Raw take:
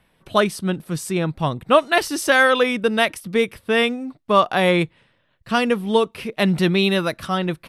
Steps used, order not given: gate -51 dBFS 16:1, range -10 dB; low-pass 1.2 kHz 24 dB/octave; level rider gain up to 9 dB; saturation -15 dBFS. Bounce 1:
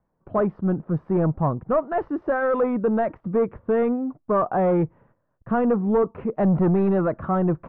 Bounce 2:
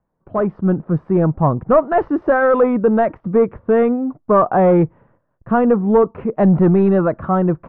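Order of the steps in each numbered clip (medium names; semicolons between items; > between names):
level rider > gate > saturation > low-pass; saturation > level rider > gate > low-pass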